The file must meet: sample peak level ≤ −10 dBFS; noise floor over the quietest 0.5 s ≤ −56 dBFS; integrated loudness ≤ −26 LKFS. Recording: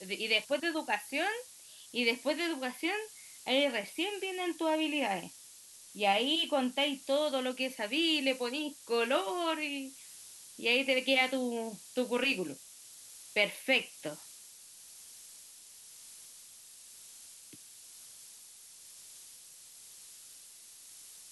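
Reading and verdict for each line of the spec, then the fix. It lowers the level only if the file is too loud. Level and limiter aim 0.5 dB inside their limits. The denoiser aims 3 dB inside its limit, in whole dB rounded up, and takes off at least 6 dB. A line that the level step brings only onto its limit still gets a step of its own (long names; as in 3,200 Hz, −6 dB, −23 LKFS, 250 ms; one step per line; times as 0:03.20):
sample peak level −13.5 dBFS: in spec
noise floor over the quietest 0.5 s −54 dBFS: out of spec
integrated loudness −32.0 LKFS: in spec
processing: broadband denoise 6 dB, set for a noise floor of −54 dBFS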